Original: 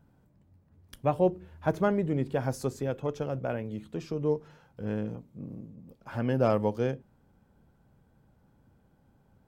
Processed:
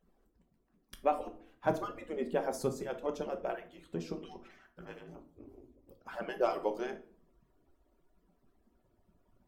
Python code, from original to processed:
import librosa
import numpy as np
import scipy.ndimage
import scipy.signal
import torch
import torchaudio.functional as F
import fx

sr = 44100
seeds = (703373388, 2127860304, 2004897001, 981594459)

y = fx.hpss_only(x, sr, part='percussive')
y = fx.peak_eq(y, sr, hz=fx.line((4.17, 3900.0), (4.83, 1300.0)), db=13.0, octaves=0.56, at=(4.17, 4.83), fade=0.02)
y = fx.room_shoebox(y, sr, seeds[0], volume_m3=480.0, walls='furnished', distance_m=1.1)
y = y * librosa.db_to_amplitude(-2.0)